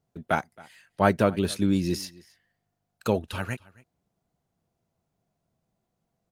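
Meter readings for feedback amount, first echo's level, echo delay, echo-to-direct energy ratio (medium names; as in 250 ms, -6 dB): no regular repeats, -23.5 dB, 270 ms, -23.5 dB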